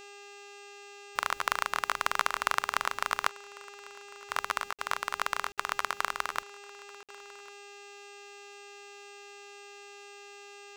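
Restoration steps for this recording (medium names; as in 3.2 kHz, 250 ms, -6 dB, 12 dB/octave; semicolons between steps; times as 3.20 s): de-hum 404.9 Hz, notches 20; band-stop 2.7 kHz, Q 30; interpolate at 4.73/5.52/7.03 s, 57 ms; inverse comb 1099 ms -23.5 dB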